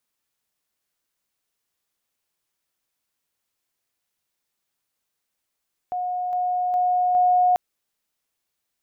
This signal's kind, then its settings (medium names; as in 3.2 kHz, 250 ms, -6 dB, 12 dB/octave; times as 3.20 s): level ladder 724 Hz -23.5 dBFS, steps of 3 dB, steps 4, 0.41 s 0.00 s